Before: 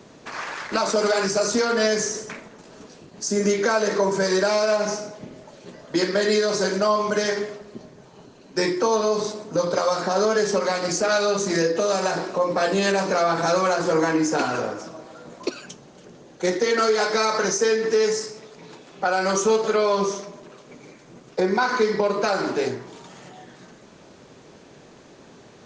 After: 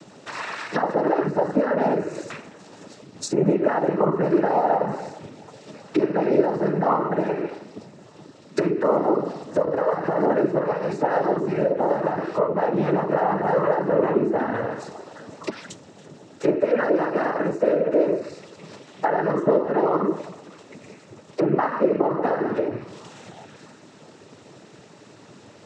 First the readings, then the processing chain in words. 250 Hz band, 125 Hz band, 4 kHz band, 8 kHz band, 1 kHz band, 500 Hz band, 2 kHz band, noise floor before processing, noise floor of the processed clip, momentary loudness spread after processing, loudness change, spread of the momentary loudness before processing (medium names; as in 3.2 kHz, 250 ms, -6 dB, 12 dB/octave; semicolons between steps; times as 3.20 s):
+2.5 dB, +3.5 dB, under -10 dB, under -15 dB, +0.5 dB, -0.5 dB, -6.0 dB, -49 dBFS, -49 dBFS, 15 LU, -0.5 dB, 13 LU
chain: low-pass that closes with the level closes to 1 kHz, closed at -19.5 dBFS; noise-vocoded speech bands 12; trim +1.5 dB